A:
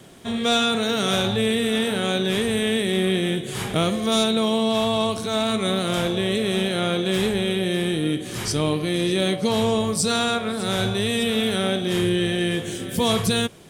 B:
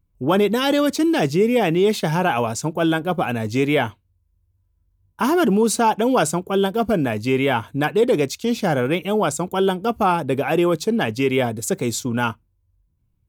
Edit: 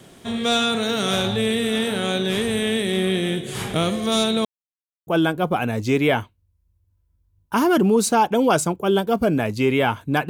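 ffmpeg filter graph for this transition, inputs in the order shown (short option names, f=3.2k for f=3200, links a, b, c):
-filter_complex "[0:a]apad=whole_dur=10.29,atrim=end=10.29,asplit=2[a][b];[a]atrim=end=4.45,asetpts=PTS-STARTPTS,afade=t=out:st=4.446:d=0.004:c=hsin[c];[b]atrim=start=4.45:end=5.07,asetpts=PTS-STARTPTS,volume=0[d];[1:a]atrim=start=2.74:end=7.96,asetpts=PTS-STARTPTS,afade=t=in:d=0.004:c=hsin[e];[c][d][e]concat=n=3:v=0:a=1"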